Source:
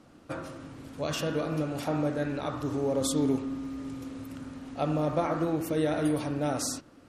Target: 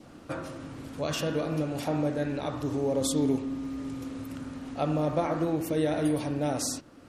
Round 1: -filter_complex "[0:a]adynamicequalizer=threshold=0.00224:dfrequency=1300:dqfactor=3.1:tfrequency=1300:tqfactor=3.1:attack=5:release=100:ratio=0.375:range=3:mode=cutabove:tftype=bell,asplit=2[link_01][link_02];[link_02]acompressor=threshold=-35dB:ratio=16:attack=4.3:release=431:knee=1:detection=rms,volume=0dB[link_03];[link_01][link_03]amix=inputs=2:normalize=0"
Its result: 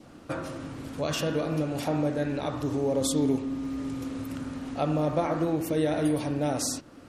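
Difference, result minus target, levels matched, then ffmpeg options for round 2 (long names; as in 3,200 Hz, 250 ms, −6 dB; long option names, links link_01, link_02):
downward compressor: peak gain reduction −9 dB
-filter_complex "[0:a]adynamicequalizer=threshold=0.00224:dfrequency=1300:dqfactor=3.1:tfrequency=1300:tqfactor=3.1:attack=5:release=100:ratio=0.375:range=3:mode=cutabove:tftype=bell,asplit=2[link_01][link_02];[link_02]acompressor=threshold=-44.5dB:ratio=16:attack=4.3:release=431:knee=1:detection=rms,volume=0dB[link_03];[link_01][link_03]amix=inputs=2:normalize=0"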